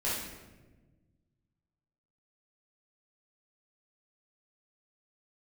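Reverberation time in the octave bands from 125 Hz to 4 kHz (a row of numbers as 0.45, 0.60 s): 2.3, 1.9, 1.5, 1.0, 1.0, 0.80 s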